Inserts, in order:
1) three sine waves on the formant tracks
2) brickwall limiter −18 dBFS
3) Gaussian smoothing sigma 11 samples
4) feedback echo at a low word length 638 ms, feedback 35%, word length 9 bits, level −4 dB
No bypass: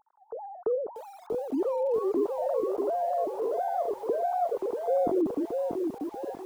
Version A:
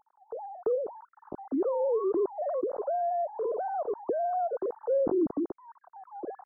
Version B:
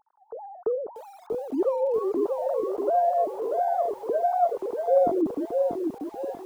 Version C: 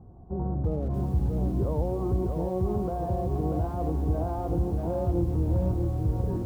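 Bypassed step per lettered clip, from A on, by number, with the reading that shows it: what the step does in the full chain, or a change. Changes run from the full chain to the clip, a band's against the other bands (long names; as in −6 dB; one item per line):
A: 4, change in momentary loudness spread +5 LU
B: 2, change in crest factor +4.0 dB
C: 1, change in momentary loudness spread −6 LU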